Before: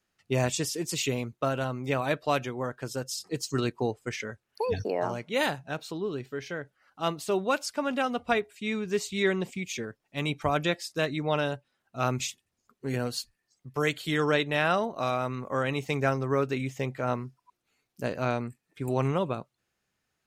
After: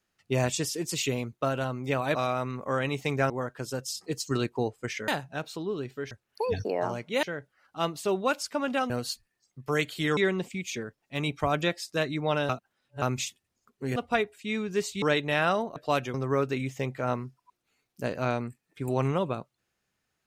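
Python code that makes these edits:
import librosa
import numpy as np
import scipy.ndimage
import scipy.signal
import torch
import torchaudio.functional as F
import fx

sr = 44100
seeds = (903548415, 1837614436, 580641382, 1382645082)

y = fx.edit(x, sr, fx.swap(start_s=2.15, length_s=0.38, other_s=14.99, other_length_s=1.15),
    fx.move(start_s=5.43, length_s=1.03, to_s=4.31),
    fx.swap(start_s=8.13, length_s=1.06, other_s=12.98, other_length_s=1.27),
    fx.reverse_span(start_s=11.51, length_s=0.53), tone=tone)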